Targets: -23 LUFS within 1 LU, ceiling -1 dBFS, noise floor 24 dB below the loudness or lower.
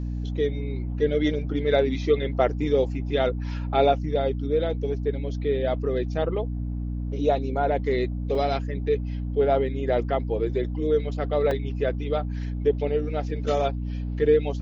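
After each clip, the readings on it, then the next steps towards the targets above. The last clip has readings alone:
dropouts 2; longest dropout 3.2 ms; hum 60 Hz; harmonics up to 300 Hz; hum level -27 dBFS; loudness -25.5 LUFS; peak -7.0 dBFS; loudness target -23.0 LUFS
-> interpolate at 8.35/11.51, 3.2 ms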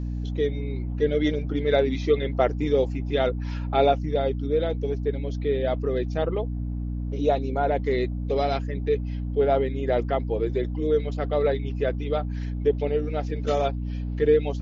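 dropouts 0; hum 60 Hz; harmonics up to 300 Hz; hum level -27 dBFS
-> de-hum 60 Hz, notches 5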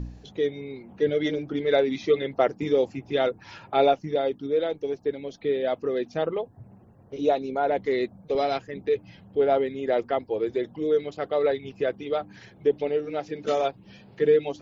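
hum none; loudness -26.5 LUFS; peak -8.0 dBFS; loudness target -23.0 LUFS
-> gain +3.5 dB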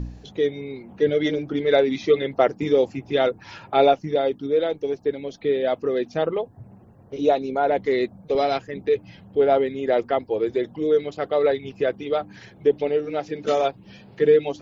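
loudness -23.0 LUFS; peak -4.5 dBFS; noise floor -50 dBFS

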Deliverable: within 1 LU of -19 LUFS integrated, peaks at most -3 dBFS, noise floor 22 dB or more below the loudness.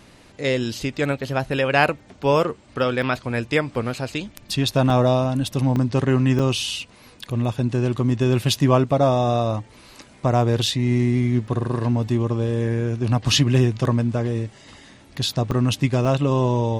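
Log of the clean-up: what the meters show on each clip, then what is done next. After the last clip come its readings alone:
dropouts 8; longest dropout 3.1 ms; loudness -21.5 LUFS; peak -3.5 dBFS; loudness target -19.0 LUFS
-> interpolate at 3.02/4.9/5.76/6.39/10.66/11.47/15.51/16.05, 3.1 ms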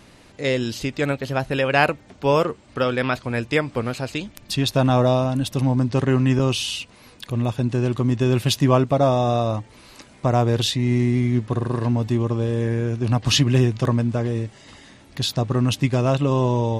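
dropouts 0; loudness -21.5 LUFS; peak -3.5 dBFS; loudness target -19.0 LUFS
-> gain +2.5 dB; limiter -3 dBFS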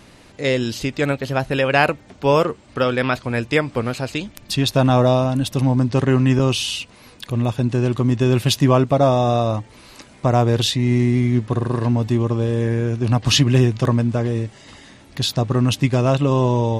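loudness -19.0 LUFS; peak -3.0 dBFS; noise floor -47 dBFS

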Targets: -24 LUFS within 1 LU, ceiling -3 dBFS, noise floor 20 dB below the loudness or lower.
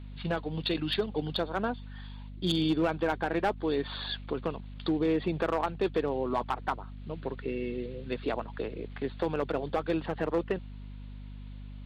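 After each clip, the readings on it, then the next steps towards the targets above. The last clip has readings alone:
clipped 0.5%; flat tops at -20.5 dBFS; hum 50 Hz; harmonics up to 250 Hz; hum level -41 dBFS; loudness -32.0 LUFS; peak -20.5 dBFS; loudness target -24.0 LUFS
-> clip repair -20.5 dBFS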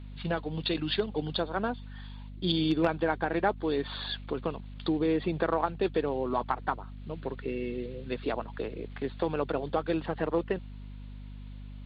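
clipped 0.0%; hum 50 Hz; harmonics up to 250 Hz; hum level -40 dBFS
-> notches 50/100/150/200/250 Hz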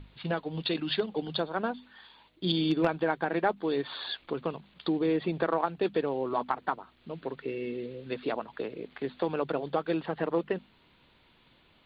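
hum none; loudness -31.5 LUFS; peak -11.0 dBFS; loudness target -24.0 LUFS
-> gain +7.5 dB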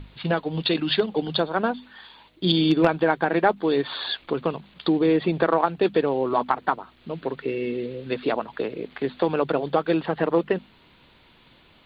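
loudness -24.0 LUFS; peak -3.5 dBFS; noise floor -56 dBFS

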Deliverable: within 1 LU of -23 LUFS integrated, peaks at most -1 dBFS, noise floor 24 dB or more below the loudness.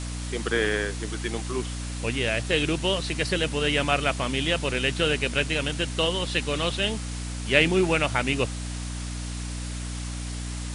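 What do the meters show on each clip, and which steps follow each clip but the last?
hum 60 Hz; harmonics up to 300 Hz; hum level -30 dBFS; noise floor -33 dBFS; noise floor target -50 dBFS; loudness -26.0 LUFS; peak -5.5 dBFS; loudness target -23.0 LUFS
-> de-hum 60 Hz, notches 5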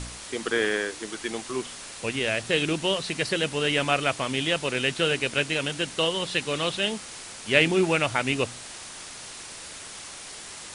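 hum none; noise floor -41 dBFS; noise floor target -50 dBFS
-> noise print and reduce 9 dB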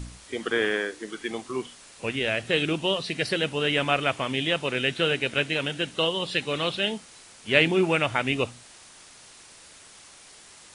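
noise floor -50 dBFS; loudness -25.5 LUFS; peak -5.5 dBFS; loudness target -23.0 LUFS
-> gain +2.5 dB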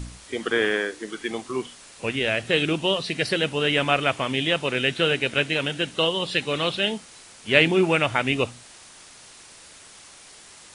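loudness -23.0 LUFS; peak -3.0 dBFS; noise floor -48 dBFS

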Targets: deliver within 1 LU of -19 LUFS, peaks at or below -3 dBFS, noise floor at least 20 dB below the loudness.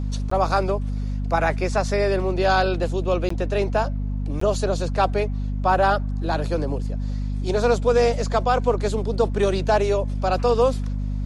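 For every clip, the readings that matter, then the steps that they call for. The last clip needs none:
dropouts 3; longest dropout 14 ms; hum 50 Hz; harmonics up to 250 Hz; hum level -23 dBFS; loudness -22.5 LUFS; peak -7.5 dBFS; loudness target -19.0 LUFS
-> interpolate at 0.3/3.29/4.4, 14 ms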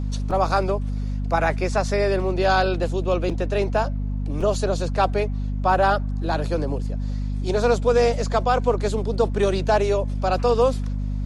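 dropouts 0; hum 50 Hz; harmonics up to 250 Hz; hum level -23 dBFS
-> notches 50/100/150/200/250 Hz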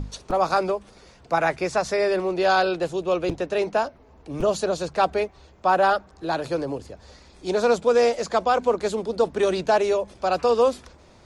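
hum none; loudness -23.0 LUFS; peak -9.0 dBFS; loudness target -19.0 LUFS
-> gain +4 dB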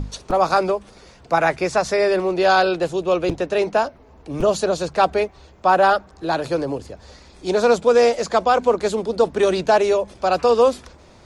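loudness -19.0 LUFS; peak -5.0 dBFS; noise floor -48 dBFS

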